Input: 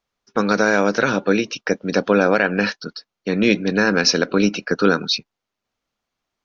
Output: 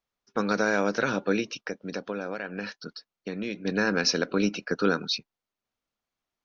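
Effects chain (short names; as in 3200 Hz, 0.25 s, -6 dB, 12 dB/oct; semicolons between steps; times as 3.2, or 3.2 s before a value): 1.6–3.65 compressor 3:1, threshold -24 dBFS, peak gain reduction 10.5 dB; gain -8 dB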